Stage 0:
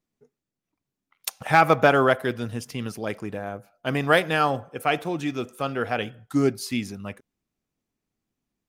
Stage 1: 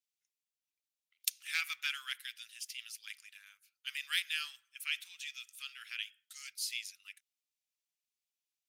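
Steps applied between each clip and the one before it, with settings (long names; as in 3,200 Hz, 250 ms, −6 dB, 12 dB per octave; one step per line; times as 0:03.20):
inverse Chebyshev high-pass filter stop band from 720 Hz, stop band 60 dB
level −3 dB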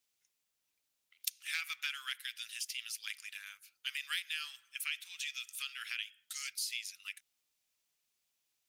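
downward compressor 3 to 1, threshold −48 dBFS, peak gain reduction 15.5 dB
level +9.5 dB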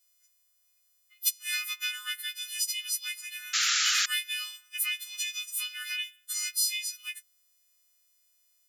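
every partial snapped to a pitch grid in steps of 3 semitones
sound drawn into the spectrogram noise, 0:03.53–0:04.06, 1,200–7,500 Hz −26 dBFS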